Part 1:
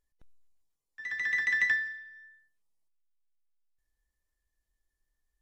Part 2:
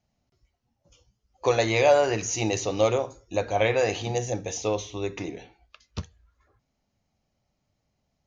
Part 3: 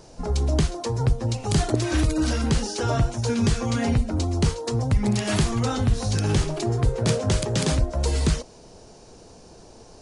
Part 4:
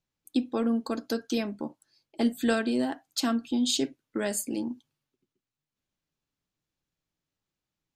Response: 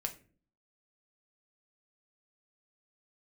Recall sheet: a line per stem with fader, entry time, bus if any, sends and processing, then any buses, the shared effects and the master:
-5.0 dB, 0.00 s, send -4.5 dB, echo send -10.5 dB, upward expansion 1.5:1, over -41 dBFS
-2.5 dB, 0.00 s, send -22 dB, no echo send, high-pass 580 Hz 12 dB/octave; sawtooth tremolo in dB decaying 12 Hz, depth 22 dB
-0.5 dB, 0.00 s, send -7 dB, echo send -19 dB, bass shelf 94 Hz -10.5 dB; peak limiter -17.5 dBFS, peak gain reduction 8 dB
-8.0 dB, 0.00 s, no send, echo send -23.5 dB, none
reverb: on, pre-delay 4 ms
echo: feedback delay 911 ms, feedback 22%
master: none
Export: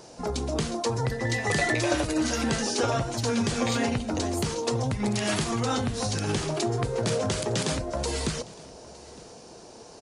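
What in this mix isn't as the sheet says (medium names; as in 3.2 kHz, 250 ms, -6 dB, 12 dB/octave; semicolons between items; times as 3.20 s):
stem 3: missing bass shelf 94 Hz -10.5 dB; master: extra high-pass 240 Hz 6 dB/octave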